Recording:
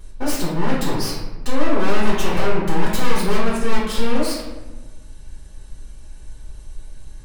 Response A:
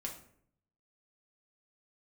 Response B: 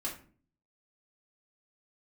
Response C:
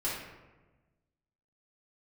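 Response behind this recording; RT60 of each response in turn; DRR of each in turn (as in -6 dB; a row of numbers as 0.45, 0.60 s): C; 0.65, 0.45, 1.2 s; -0.5, -4.0, -8.5 dB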